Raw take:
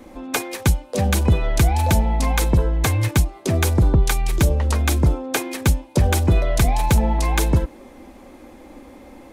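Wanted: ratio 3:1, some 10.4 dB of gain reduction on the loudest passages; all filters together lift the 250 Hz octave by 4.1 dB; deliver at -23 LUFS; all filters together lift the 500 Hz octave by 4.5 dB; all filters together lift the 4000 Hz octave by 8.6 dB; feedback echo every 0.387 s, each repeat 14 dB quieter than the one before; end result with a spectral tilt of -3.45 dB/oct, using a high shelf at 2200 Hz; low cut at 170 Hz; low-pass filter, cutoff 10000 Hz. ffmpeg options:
-af "highpass=170,lowpass=10k,equalizer=f=250:t=o:g=6,equalizer=f=500:t=o:g=3.5,highshelf=f=2.2k:g=5.5,equalizer=f=4k:t=o:g=5.5,acompressor=threshold=-27dB:ratio=3,aecho=1:1:387|774:0.2|0.0399,volume=6dB"

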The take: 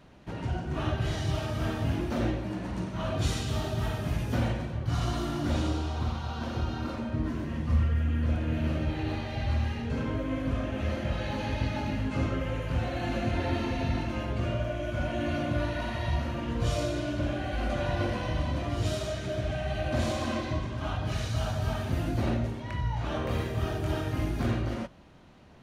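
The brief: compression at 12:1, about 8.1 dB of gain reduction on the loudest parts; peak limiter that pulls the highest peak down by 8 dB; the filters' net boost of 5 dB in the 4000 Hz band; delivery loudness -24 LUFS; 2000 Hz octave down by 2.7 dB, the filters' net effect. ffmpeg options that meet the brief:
-af "equalizer=f=2k:t=o:g=-6,equalizer=f=4k:t=o:g=8.5,acompressor=threshold=-28dB:ratio=12,volume=13dB,alimiter=limit=-15dB:level=0:latency=1"

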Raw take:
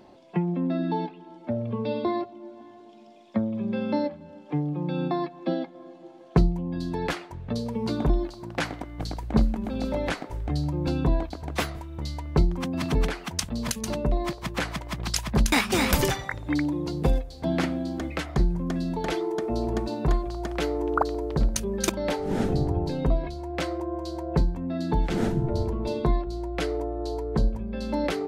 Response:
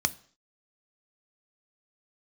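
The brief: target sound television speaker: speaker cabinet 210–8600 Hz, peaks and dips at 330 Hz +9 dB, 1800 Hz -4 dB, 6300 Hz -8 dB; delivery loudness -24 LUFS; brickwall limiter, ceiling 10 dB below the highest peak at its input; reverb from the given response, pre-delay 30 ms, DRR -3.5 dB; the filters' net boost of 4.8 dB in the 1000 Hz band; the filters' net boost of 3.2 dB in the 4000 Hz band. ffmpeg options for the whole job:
-filter_complex "[0:a]equalizer=f=1k:t=o:g=6,equalizer=f=4k:t=o:g=4.5,alimiter=limit=-15dB:level=0:latency=1,asplit=2[a][b];[1:a]atrim=start_sample=2205,adelay=30[c];[b][c]afir=irnorm=-1:irlink=0,volume=-4dB[d];[a][d]amix=inputs=2:normalize=0,highpass=f=210:w=0.5412,highpass=f=210:w=1.3066,equalizer=f=330:t=q:w=4:g=9,equalizer=f=1.8k:t=q:w=4:g=-4,equalizer=f=6.3k:t=q:w=4:g=-8,lowpass=f=8.6k:w=0.5412,lowpass=f=8.6k:w=1.3066,volume=-2.5dB"

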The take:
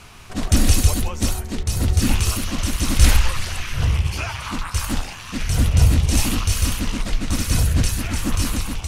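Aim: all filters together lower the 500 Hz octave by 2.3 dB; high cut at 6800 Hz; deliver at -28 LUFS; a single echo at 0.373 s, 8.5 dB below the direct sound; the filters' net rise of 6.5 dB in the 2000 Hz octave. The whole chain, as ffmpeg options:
-af "lowpass=6.8k,equalizer=f=500:t=o:g=-3.5,equalizer=f=2k:t=o:g=8.5,aecho=1:1:373:0.376,volume=-7.5dB"

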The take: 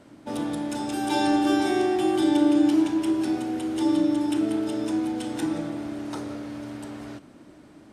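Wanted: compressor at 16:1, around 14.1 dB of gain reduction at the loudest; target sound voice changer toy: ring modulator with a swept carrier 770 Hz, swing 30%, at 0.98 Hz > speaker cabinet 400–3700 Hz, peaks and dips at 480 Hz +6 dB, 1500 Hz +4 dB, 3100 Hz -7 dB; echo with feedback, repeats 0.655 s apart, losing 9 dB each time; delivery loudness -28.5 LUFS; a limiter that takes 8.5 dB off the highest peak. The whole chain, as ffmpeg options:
-af "acompressor=threshold=-30dB:ratio=16,alimiter=level_in=6dB:limit=-24dB:level=0:latency=1,volume=-6dB,aecho=1:1:655|1310|1965|2620:0.355|0.124|0.0435|0.0152,aeval=exprs='val(0)*sin(2*PI*770*n/s+770*0.3/0.98*sin(2*PI*0.98*n/s))':c=same,highpass=400,equalizer=f=480:t=q:w=4:g=6,equalizer=f=1.5k:t=q:w=4:g=4,equalizer=f=3.1k:t=q:w=4:g=-7,lowpass=f=3.7k:w=0.5412,lowpass=f=3.7k:w=1.3066,volume=10.5dB"

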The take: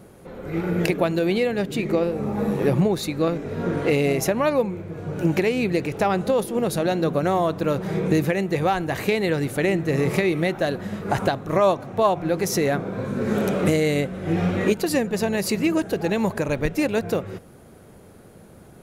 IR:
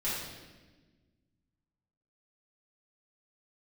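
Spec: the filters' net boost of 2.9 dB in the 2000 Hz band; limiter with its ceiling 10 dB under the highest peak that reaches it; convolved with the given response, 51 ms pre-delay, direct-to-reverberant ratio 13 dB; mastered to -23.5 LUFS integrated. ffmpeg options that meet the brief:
-filter_complex "[0:a]equalizer=f=2k:t=o:g=3.5,alimiter=limit=-15.5dB:level=0:latency=1,asplit=2[a][b];[1:a]atrim=start_sample=2205,adelay=51[c];[b][c]afir=irnorm=-1:irlink=0,volume=-19dB[d];[a][d]amix=inputs=2:normalize=0,volume=1.5dB"

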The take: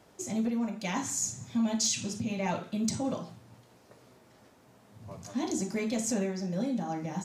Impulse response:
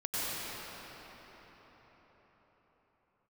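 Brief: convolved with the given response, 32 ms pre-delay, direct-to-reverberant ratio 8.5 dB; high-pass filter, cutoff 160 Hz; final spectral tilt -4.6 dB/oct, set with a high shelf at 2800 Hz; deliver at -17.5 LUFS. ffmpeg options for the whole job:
-filter_complex "[0:a]highpass=160,highshelf=f=2.8k:g=-6.5,asplit=2[a][b];[1:a]atrim=start_sample=2205,adelay=32[c];[b][c]afir=irnorm=-1:irlink=0,volume=-16.5dB[d];[a][d]amix=inputs=2:normalize=0,volume=16dB"

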